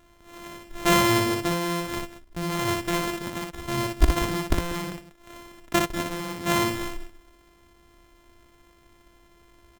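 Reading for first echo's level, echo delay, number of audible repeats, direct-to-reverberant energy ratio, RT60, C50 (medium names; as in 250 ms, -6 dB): -4.0 dB, 60 ms, 2, no reverb, no reverb, no reverb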